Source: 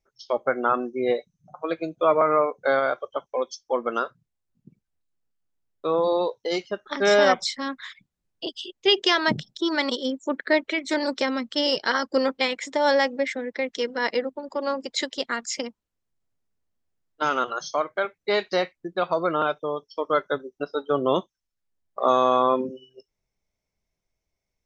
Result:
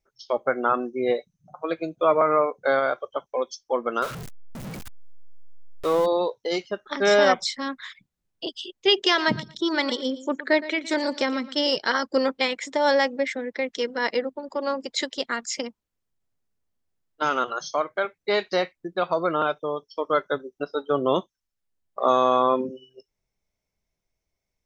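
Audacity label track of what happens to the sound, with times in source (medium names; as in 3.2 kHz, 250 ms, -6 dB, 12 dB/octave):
4.020000	6.060000	jump at every zero crossing of -29.5 dBFS
8.930000	11.630000	feedback delay 116 ms, feedback 17%, level -16 dB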